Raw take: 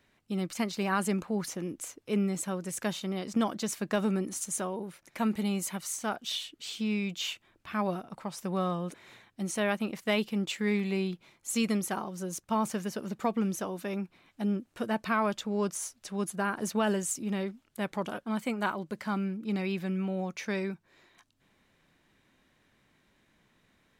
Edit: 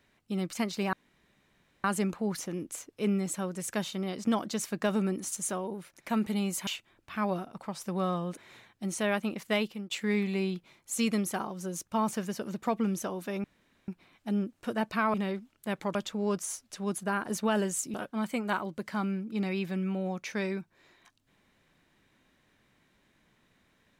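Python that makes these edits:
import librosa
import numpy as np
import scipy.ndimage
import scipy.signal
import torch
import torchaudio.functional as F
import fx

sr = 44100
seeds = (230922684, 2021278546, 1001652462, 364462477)

y = fx.edit(x, sr, fx.insert_room_tone(at_s=0.93, length_s=0.91),
    fx.cut(start_s=5.76, length_s=1.48),
    fx.fade_out_to(start_s=10.11, length_s=0.37, floor_db=-17.5),
    fx.insert_room_tone(at_s=14.01, length_s=0.44),
    fx.move(start_s=17.26, length_s=0.81, to_s=15.27), tone=tone)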